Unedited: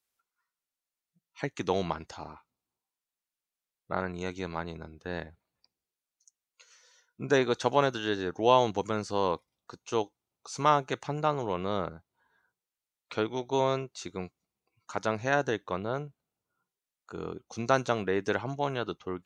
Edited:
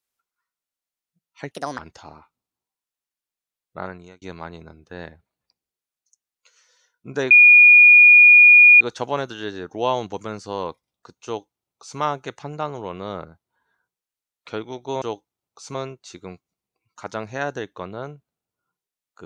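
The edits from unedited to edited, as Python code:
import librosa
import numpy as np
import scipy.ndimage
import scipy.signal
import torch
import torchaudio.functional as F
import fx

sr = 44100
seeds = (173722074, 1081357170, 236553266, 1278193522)

y = fx.edit(x, sr, fx.speed_span(start_s=1.51, length_s=0.42, speed=1.52),
    fx.fade_out_span(start_s=3.99, length_s=0.37),
    fx.insert_tone(at_s=7.45, length_s=1.5, hz=2440.0, db=-6.0),
    fx.duplicate(start_s=9.9, length_s=0.73, to_s=13.66), tone=tone)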